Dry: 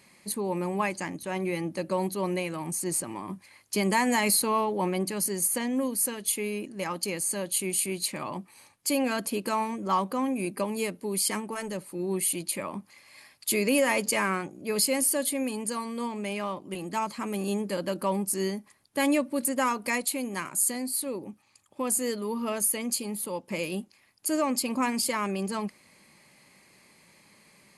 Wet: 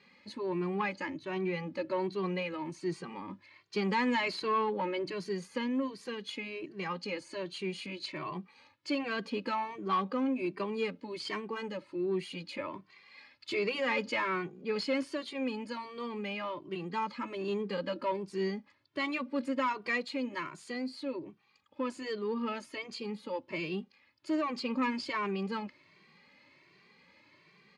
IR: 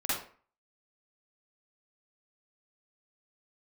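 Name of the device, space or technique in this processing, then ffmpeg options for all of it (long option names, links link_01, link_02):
barber-pole flanger into a guitar amplifier: -filter_complex "[0:a]asplit=2[link_01][link_02];[link_02]adelay=2.1,afreqshift=1.3[link_03];[link_01][link_03]amix=inputs=2:normalize=1,asoftclip=type=tanh:threshold=-22dB,highpass=92,equalizer=frequency=120:width_type=q:width=4:gain=-4,equalizer=frequency=210:width_type=q:width=4:gain=-5,equalizer=frequency=700:width_type=q:width=4:gain=-9,lowpass=frequency=4300:width=0.5412,lowpass=frequency=4300:width=1.3066,volume=1dB"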